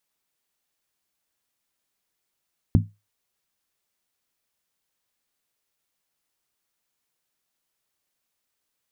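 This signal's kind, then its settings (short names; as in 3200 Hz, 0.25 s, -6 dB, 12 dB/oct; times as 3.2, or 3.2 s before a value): skin hit, lowest mode 103 Hz, decay 0.24 s, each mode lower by 3.5 dB, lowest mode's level -11.5 dB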